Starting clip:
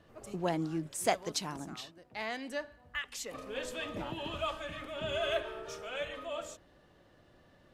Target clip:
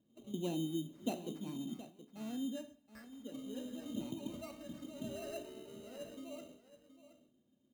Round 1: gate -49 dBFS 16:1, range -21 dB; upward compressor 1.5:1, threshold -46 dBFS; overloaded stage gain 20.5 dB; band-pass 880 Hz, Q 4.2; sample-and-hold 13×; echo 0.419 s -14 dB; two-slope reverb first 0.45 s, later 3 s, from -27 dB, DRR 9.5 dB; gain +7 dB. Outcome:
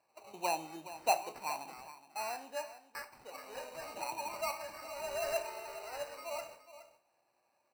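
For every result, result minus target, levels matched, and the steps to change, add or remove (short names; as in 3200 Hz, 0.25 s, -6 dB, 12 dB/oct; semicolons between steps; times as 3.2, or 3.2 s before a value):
250 Hz band -18.5 dB; echo 0.303 s early
change: band-pass 240 Hz, Q 4.2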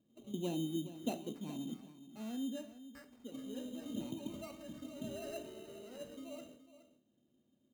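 echo 0.303 s early
change: echo 0.722 s -14 dB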